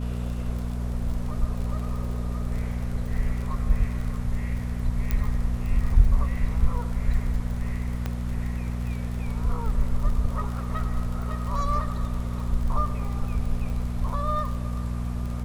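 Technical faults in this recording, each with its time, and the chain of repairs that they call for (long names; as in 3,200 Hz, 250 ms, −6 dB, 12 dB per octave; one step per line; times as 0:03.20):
surface crackle 46 per second −33 dBFS
mains hum 60 Hz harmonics 4 −29 dBFS
0:05.11: click −13 dBFS
0:08.06: click −16 dBFS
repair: click removal
hum removal 60 Hz, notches 4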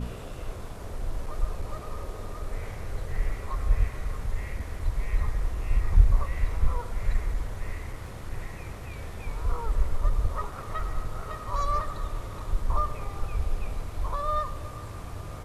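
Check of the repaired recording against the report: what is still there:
0:08.06: click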